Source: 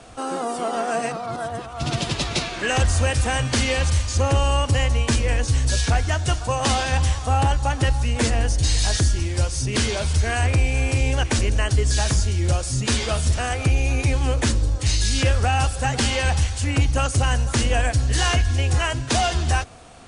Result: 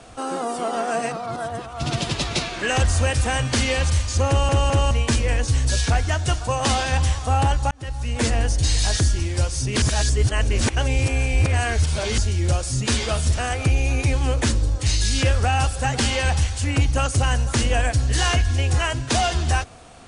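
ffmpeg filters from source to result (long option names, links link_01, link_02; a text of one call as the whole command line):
ffmpeg -i in.wav -filter_complex "[0:a]asplit=7[link_01][link_02][link_03][link_04][link_05][link_06][link_07];[link_01]atrim=end=4.492[link_08];[link_02]atrim=start=4.278:end=4.492[link_09];[link_03]atrim=start=4.278:end=4.492[link_10];[link_04]atrim=start=4.908:end=7.71,asetpts=PTS-STARTPTS,afade=type=out:start_time=2.798:duration=0.004:curve=hsin[link_11];[link_05]atrim=start=7.71:end=9.822,asetpts=PTS-STARTPTS,afade=type=in:duration=0.57[link_12];[link_06]atrim=start=9.818:end=12.182,asetpts=PTS-STARTPTS,areverse[link_13];[link_07]atrim=start=12.178[link_14];[link_08][link_09]acrossfade=duration=0.004:curve1=hsin:curve2=hsin[link_15];[link_15][link_10]acrossfade=duration=0.004:curve1=hsin:curve2=hsin[link_16];[link_11][link_12]concat=n=2:v=0:a=1[link_17];[link_16][link_17]acrossfade=duration=0.004:curve1=hsin:curve2=hsin[link_18];[link_18][link_13]acrossfade=duration=0.004:curve1=hsin:curve2=hsin[link_19];[link_19][link_14]acrossfade=duration=0.004:curve1=hsin:curve2=hsin" out.wav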